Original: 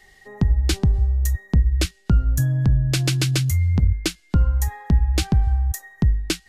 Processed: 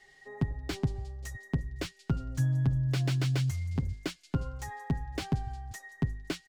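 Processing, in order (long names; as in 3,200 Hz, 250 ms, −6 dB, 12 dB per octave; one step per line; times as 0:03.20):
low-pass filter 8,500 Hz 12 dB per octave
low-shelf EQ 88 Hz −11 dB
comb filter 7.4 ms, depth 57%
on a send: delay with a high-pass on its return 178 ms, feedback 63%, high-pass 3,400 Hz, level −24 dB
on the sum: slew-rate limiting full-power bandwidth 120 Hz
level −7.5 dB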